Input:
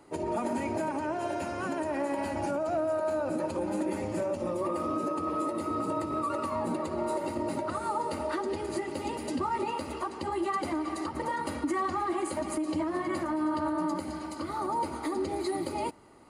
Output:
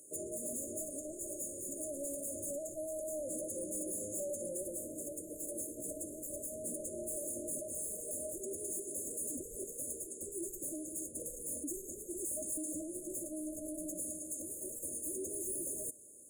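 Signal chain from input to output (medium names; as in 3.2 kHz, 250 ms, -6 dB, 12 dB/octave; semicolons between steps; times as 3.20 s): pre-emphasis filter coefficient 0.97; in parallel at -10 dB: sine folder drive 20 dB, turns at -26.5 dBFS; on the sum: brick-wall FIR band-stop 640–6400 Hz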